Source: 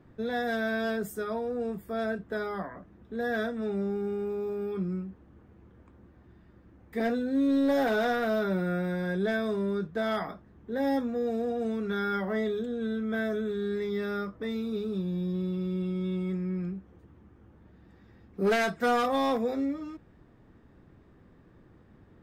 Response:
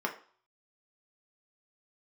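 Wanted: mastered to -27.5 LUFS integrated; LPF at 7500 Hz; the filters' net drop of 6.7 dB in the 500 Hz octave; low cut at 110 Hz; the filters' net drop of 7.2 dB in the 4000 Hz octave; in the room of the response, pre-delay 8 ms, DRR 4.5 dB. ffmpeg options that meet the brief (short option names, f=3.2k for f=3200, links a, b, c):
-filter_complex "[0:a]highpass=110,lowpass=7.5k,equalizer=f=500:t=o:g=-8.5,equalizer=f=4k:t=o:g=-8.5,asplit=2[a][b];[1:a]atrim=start_sample=2205,adelay=8[c];[b][c]afir=irnorm=-1:irlink=0,volume=-11.5dB[d];[a][d]amix=inputs=2:normalize=0,volume=4.5dB"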